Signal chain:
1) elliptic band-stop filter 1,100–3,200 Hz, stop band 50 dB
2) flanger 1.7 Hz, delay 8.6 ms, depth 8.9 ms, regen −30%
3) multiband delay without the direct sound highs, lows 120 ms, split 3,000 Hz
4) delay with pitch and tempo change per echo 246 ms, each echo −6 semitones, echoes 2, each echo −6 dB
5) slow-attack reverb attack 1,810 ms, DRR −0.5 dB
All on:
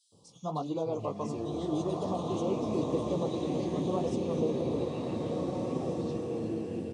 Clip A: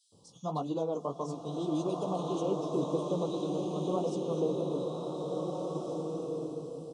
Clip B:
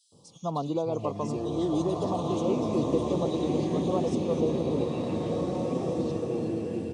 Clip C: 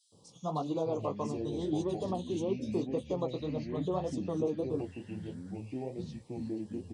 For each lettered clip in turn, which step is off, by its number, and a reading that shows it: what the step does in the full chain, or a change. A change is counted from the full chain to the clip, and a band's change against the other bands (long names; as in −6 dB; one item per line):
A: 4, change in momentary loudness spread +1 LU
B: 2, change in integrated loudness +4.0 LU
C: 5, change in momentary loudness spread +4 LU